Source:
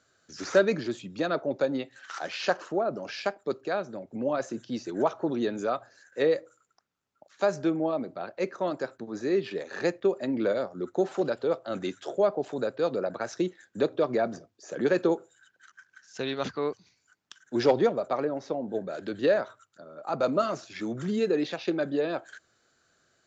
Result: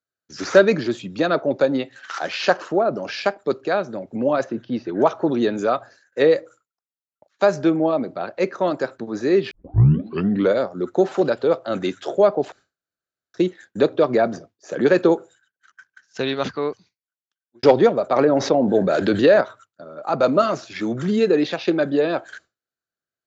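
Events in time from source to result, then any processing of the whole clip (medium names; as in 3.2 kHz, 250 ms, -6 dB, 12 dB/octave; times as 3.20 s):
4.44–5.02 s: distance through air 270 m
9.51 s: tape start 1.01 s
12.52–13.34 s: room tone
16.22–17.63 s: fade out
18.16–19.41 s: level flattener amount 50%
whole clip: low-pass 6.4 kHz 12 dB/octave; expander -47 dBFS; trim +8.5 dB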